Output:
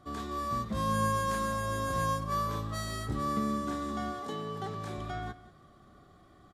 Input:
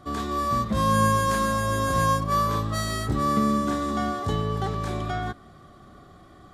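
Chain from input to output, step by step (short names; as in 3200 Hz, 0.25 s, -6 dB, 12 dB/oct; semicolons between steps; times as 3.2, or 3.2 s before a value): 4.22–4.96 HPF 230 Hz -> 71 Hz 24 dB/oct; echo 0.183 s -18 dB; gain -8.5 dB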